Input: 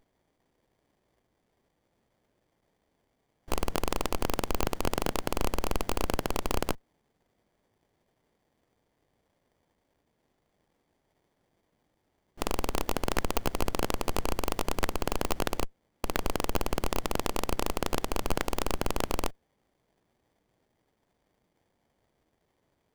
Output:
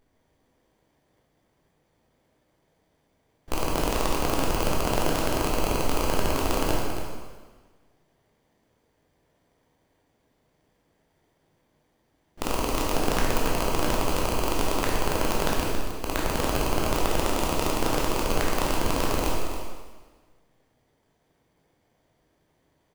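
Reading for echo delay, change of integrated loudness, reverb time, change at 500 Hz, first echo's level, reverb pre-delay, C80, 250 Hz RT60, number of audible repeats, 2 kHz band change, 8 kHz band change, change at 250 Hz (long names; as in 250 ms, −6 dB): 277 ms, +5.5 dB, 1.4 s, +5.5 dB, −9.5 dB, 7 ms, 1.5 dB, 1.5 s, 1, +6.0 dB, +5.5 dB, +6.0 dB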